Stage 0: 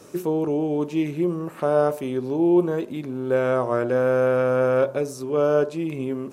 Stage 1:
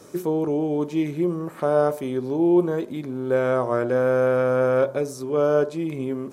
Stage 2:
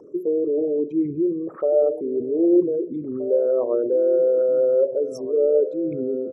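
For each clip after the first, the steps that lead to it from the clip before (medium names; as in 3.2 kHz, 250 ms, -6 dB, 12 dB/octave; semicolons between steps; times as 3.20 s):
band-stop 2.7 kHz, Q 8.5
resonances exaggerated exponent 3; echo from a far wall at 270 m, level -13 dB; trim +1.5 dB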